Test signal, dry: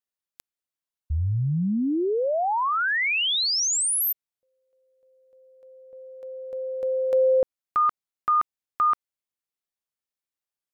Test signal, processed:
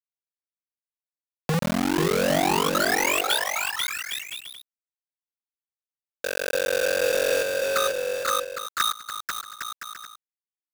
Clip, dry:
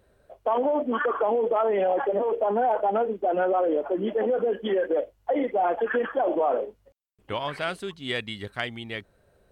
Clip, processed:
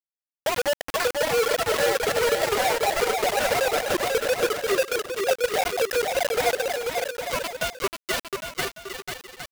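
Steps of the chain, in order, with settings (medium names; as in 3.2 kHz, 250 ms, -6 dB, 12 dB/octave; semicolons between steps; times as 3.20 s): formants replaced by sine waves; treble shelf 2.4 kHz +4 dB; band-stop 1.2 kHz, Q 9.4; compression 5:1, threshold -30 dBFS; bit crusher 5-bit; on a send: bouncing-ball echo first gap 490 ms, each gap 0.65×, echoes 5; on the sum: trim +5.5 dB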